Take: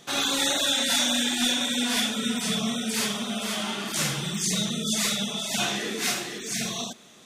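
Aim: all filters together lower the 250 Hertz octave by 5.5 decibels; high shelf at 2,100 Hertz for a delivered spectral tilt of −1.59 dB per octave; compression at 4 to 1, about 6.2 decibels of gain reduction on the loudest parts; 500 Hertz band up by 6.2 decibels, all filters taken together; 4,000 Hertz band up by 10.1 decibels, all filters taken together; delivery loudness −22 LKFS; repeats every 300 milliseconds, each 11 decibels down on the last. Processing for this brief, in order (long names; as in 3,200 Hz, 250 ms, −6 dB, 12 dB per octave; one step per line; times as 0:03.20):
parametric band 250 Hz −8.5 dB
parametric band 500 Hz +9 dB
high-shelf EQ 2,100 Hz +6.5 dB
parametric band 4,000 Hz +6 dB
downward compressor 4 to 1, threshold −19 dBFS
repeating echo 300 ms, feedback 28%, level −11 dB
level −2 dB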